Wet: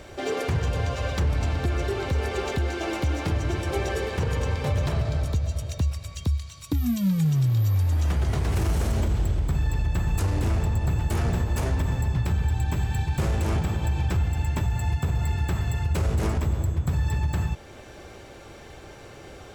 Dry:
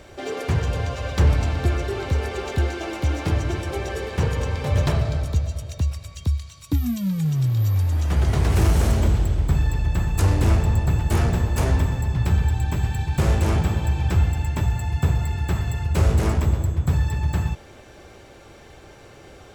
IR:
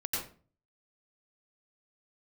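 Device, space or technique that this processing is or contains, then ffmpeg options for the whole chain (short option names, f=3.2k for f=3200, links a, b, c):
stacked limiters: -af "alimiter=limit=-14.5dB:level=0:latency=1:release=71,alimiter=limit=-18dB:level=0:latency=1:release=301,volume=1.5dB"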